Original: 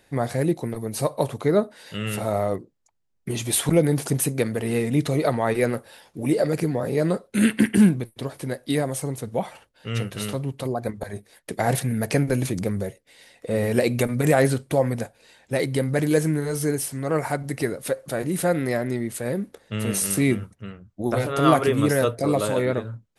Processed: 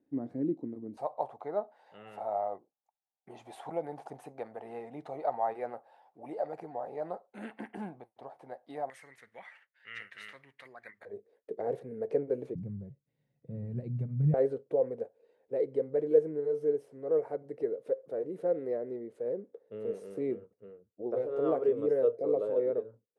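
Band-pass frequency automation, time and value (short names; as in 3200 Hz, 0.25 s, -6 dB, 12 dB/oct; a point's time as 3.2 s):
band-pass, Q 6.1
280 Hz
from 0.97 s 780 Hz
from 8.9 s 1900 Hz
from 11.05 s 450 Hz
from 12.55 s 140 Hz
from 14.34 s 460 Hz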